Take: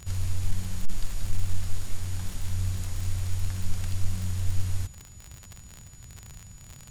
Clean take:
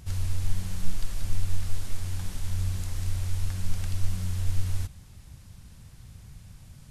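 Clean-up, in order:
clipped peaks rebuilt −13 dBFS
click removal
notch filter 6,900 Hz, Q 30

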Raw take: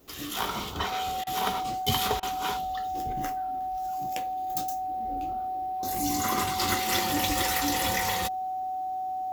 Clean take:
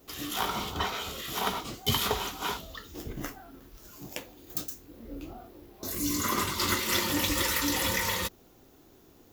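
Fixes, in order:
notch filter 750 Hz, Q 30
repair the gap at 0:01.24/0:02.20, 27 ms

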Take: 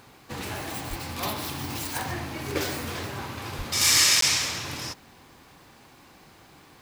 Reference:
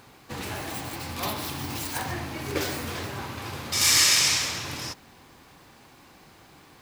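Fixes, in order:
high-pass at the plosives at 0:00.89/0:03.57
repair the gap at 0:04.21, 13 ms

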